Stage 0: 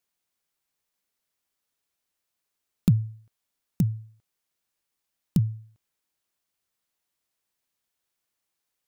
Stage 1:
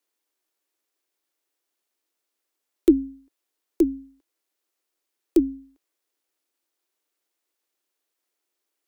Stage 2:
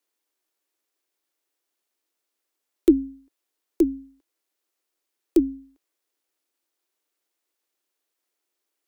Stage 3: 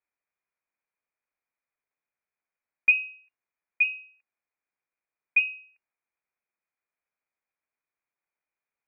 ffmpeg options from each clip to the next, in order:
-af "aeval=exprs='val(0)*sin(2*PI*300*n/s)':c=same,afreqshift=-140,lowshelf=f=220:t=q:w=3:g=-13.5,volume=1.5"
-af anull
-af "lowpass=f=2400:t=q:w=0.5098,lowpass=f=2400:t=q:w=0.6013,lowpass=f=2400:t=q:w=0.9,lowpass=f=2400:t=q:w=2.563,afreqshift=-2800,volume=0.596"

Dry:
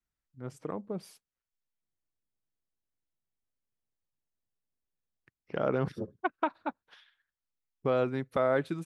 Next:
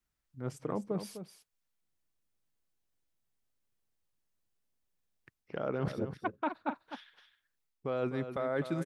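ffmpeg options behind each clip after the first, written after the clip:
-af "areverse,acompressor=threshold=0.0178:ratio=6,areverse,aecho=1:1:254:0.316,volume=1.68"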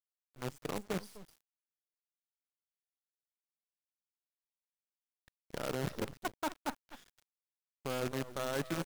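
-af "acrusher=bits=6:dc=4:mix=0:aa=0.000001,volume=0.668"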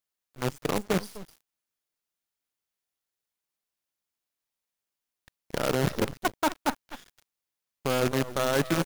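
-filter_complex "[0:a]bandreject=f=8000:w=23,asplit=2[s0][s1];[s1]aeval=exprs='val(0)*gte(abs(val(0)),0.00355)':c=same,volume=0.355[s2];[s0][s2]amix=inputs=2:normalize=0,volume=2.51"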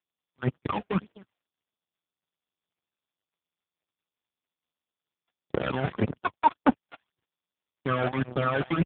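-af "aeval=exprs='0.168*(cos(1*acos(clip(val(0)/0.168,-1,1)))-cos(1*PI/2))+0.0266*(cos(6*acos(clip(val(0)/0.168,-1,1)))-cos(6*PI/2))+0.0299*(cos(7*acos(clip(val(0)/0.168,-1,1)))-cos(7*PI/2))':c=same,aphaser=in_gain=1:out_gain=1:delay=1.5:decay=0.73:speed=1.8:type=triangular" -ar 8000 -c:a libopencore_amrnb -b:a 5150

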